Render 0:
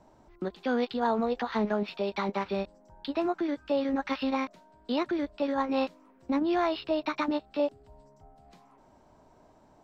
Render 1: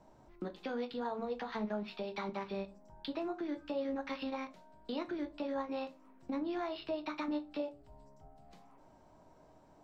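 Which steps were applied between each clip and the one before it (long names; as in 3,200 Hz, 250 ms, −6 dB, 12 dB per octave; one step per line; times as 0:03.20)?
downward compressor 3 to 1, threshold −34 dBFS, peak gain reduction 9.5 dB
convolution reverb RT60 0.30 s, pre-delay 6 ms, DRR 7.5 dB
level −4 dB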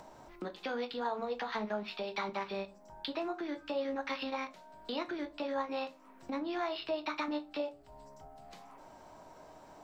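low-shelf EQ 420 Hz −11 dB
in parallel at +0.5 dB: upward compression, threshold −47 dBFS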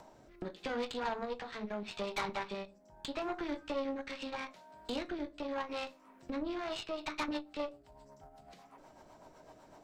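rotating-speaker cabinet horn 0.8 Hz, later 8 Hz, at 0:06.48
harmonic generator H 6 −16 dB, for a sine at −23.5 dBFS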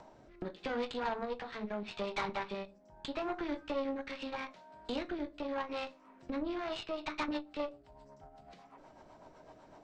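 high-frequency loss of the air 85 metres
level +1 dB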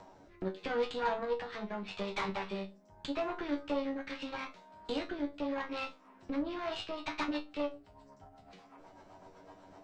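tuned comb filter 95 Hz, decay 0.21 s, harmonics all, mix 90%
level +8.5 dB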